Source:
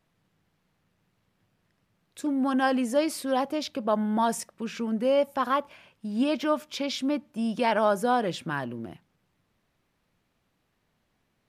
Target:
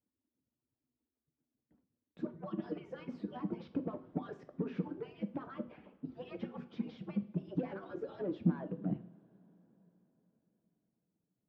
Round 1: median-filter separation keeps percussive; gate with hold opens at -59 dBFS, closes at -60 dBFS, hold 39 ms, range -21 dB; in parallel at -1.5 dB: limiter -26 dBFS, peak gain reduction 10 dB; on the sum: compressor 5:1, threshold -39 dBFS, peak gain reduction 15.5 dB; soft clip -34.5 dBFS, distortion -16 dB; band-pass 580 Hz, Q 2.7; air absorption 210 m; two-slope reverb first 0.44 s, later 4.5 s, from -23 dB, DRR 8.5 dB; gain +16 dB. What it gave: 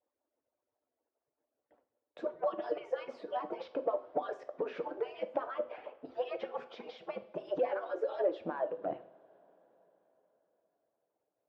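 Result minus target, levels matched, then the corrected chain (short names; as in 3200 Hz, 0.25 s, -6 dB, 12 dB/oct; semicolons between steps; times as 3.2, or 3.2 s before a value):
250 Hz band -12.0 dB; compressor: peak gain reduction +5.5 dB
median-filter separation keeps percussive; gate with hold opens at -59 dBFS, closes at -60 dBFS, hold 39 ms, range -21 dB; in parallel at -1.5 dB: limiter -26 dBFS, peak gain reduction 10 dB; on the sum: compressor 5:1, threshold -32 dBFS, peak gain reduction 10 dB; soft clip -34.5 dBFS, distortion -10 dB; band-pass 190 Hz, Q 2.7; air absorption 210 m; two-slope reverb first 0.44 s, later 4.5 s, from -23 dB, DRR 8.5 dB; gain +16 dB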